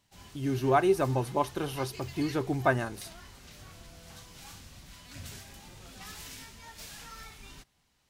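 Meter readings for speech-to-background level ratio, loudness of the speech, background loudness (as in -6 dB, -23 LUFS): 17.5 dB, -29.5 LUFS, -47.0 LUFS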